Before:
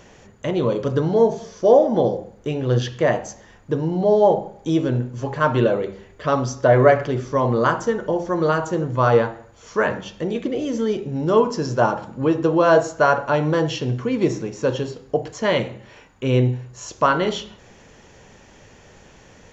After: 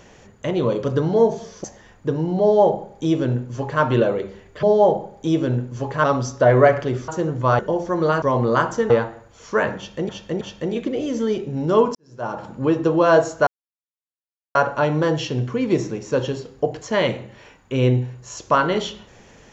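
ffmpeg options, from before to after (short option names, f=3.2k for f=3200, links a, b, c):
-filter_complex "[0:a]asplit=12[a][b][c][d][e][f][g][h][i][j][k][l];[a]atrim=end=1.642[m];[b]atrim=start=3.278:end=6.272[n];[c]atrim=start=4.048:end=5.462[o];[d]atrim=start=6.268:end=7.312[p];[e]atrim=start=8.618:end=9.132[q];[f]atrim=start=7.988:end=8.622[r];[g]atrim=start=7.308:end=7.992[s];[h]atrim=start=9.128:end=10.322[t];[i]atrim=start=9.998:end=10.322[u];[j]atrim=start=9.998:end=11.54,asetpts=PTS-STARTPTS,afade=t=out:st=1.538:d=0.004:c=hsin[v];[k]atrim=start=11.54:end=13.06,asetpts=PTS-STARTPTS,afade=t=in:d=0.53:c=qua,afade=t=out:st=1.516:d=0.004:c=hsin,apad=pad_dur=1.08[w];[l]atrim=start=13.06,asetpts=PTS-STARTPTS,afade=t=in:d=0.004:c=hsin[x];[m][n]acrossfade=d=0.004:c1=hsin:c2=hsin[y];[y][o]acrossfade=d=0.004:c1=hsin:c2=hsin[z];[z][p]acrossfade=d=0.004:c1=hsin:c2=hsin[aa];[aa][q]acrossfade=d=0.004:c1=hsin:c2=hsin[ab];[ab][r]acrossfade=d=0.004:c1=hsin:c2=hsin[ac];[ac][s]acrossfade=d=0.004:c1=hsin:c2=hsin[ad];[ad][t]acrossfade=d=0.004:c1=hsin:c2=hsin[ae];[ae][u]acrossfade=d=0.004:c1=hsin:c2=hsin[af];[v][w][x]concat=n=3:v=0:a=1[ag];[af][ag]acrossfade=d=0.004:c1=hsin:c2=hsin"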